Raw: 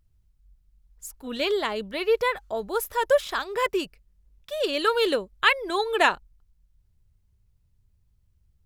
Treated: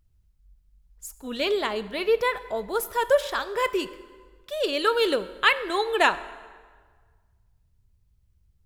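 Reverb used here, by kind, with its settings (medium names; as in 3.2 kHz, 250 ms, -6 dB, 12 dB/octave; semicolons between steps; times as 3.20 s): plate-style reverb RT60 1.6 s, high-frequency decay 0.75×, DRR 13.5 dB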